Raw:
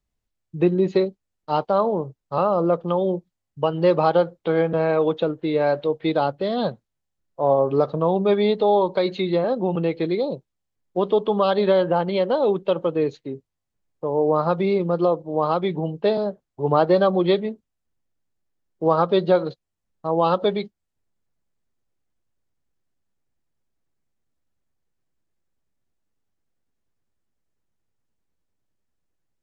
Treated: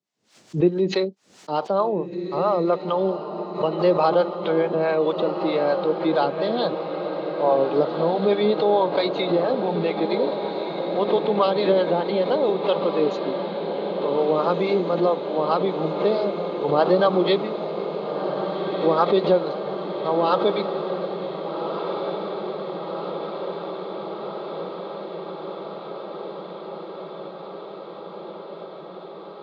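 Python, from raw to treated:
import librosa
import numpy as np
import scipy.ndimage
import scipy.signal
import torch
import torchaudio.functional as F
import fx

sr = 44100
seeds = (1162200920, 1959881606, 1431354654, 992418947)

p1 = scipy.signal.sosfilt(scipy.signal.butter(4, 160.0, 'highpass', fs=sr, output='sos'), x)
p2 = fx.bass_treble(p1, sr, bass_db=-4, treble_db=12)
p3 = fx.harmonic_tremolo(p2, sr, hz=4.6, depth_pct=70, crossover_hz=530.0)
p4 = fx.air_absorb(p3, sr, metres=130.0)
p5 = p4 + fx.echo_diffused(p4, sr, ms=1586, feedback_pct=77, wet_db=-8.0, dry=0)
p6 = fx.pre_swell(p5, sr, db_per_s=140.0)
y = F.gain(torch.from_numpy(p6), 3.0).numpy()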